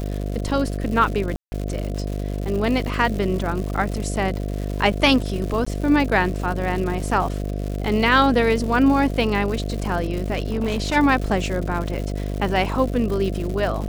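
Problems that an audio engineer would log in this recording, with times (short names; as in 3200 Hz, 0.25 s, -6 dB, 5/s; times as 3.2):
buzz 50 Hz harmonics 14 -26 dBFS
crackle 210/s -28 dBFS
1.36–1.52 gap 0.16 s
5.65–5.67 gap 15 ms
10.33–10.97 clipped -18 dBFS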